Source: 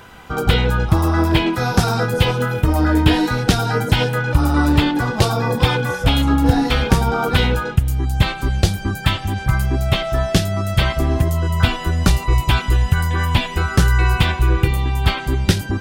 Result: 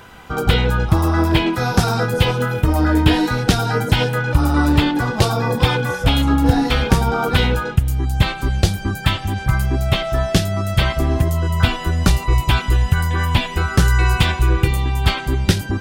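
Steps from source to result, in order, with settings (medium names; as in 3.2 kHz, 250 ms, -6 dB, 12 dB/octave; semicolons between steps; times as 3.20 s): 13.83–15.21 s: dynamic bell 7.2 kHz, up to +5 dB, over -39 dBFS, Q 0.85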